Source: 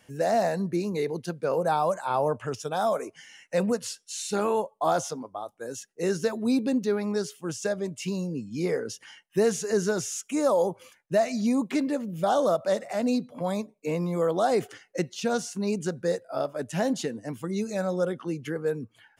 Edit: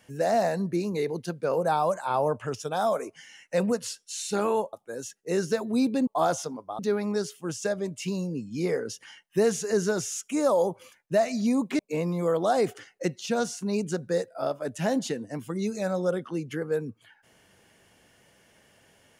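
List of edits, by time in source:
4.73–5.45 move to 6.79
11.79–13.73 cut

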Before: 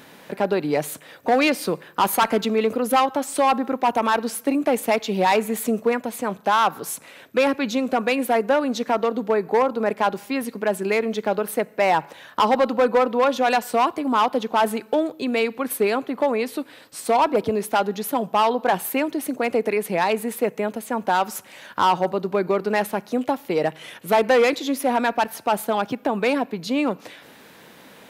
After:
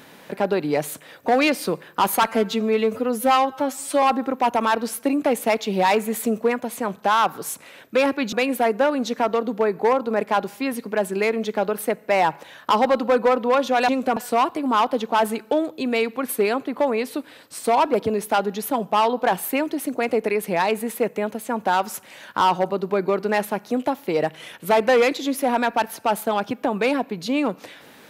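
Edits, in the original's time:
2.27–3.44 stretch 1.5×
7.74–8.02 move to 13.58

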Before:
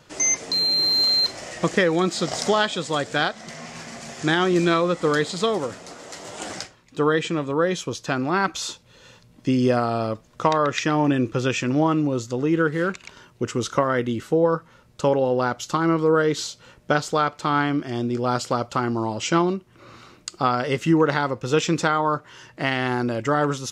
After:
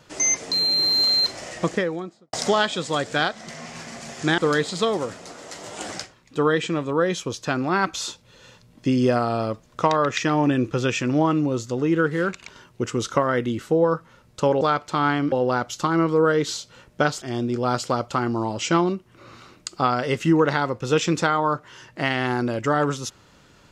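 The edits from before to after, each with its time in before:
1.47–2.33 studio fade out
4.38–4.99 cut
17.12–17.83 move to 15.22

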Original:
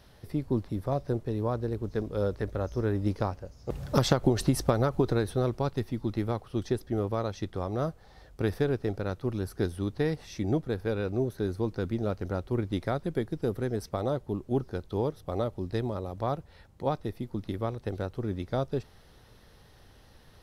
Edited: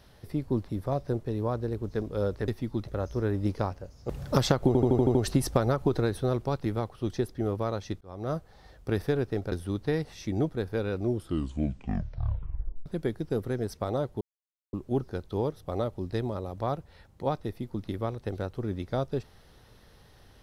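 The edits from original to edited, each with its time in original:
4.28 stutter 0.08 s, 7 plays
5.78–6.17 move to 2.48
7.53–7.87 fade in
9.04–9.64 cut
11.09 tape stop 1.89 s
14.33 insert silence 0.52 s

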